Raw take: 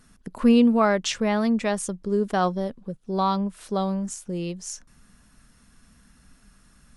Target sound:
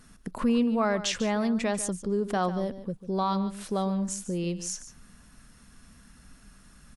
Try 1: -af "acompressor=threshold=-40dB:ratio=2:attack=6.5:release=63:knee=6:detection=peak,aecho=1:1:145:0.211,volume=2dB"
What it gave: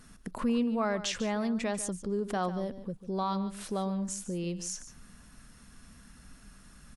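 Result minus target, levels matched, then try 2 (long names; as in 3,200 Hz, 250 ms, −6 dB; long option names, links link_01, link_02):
downward compressor: peak gain reduction +4 dB
-af "acompressor=threshold=-31.5dB:ratio=2:attack=6.5:release=63:knee=6:detection=peak,aecho=1:1:145:0.211,volume=2dB"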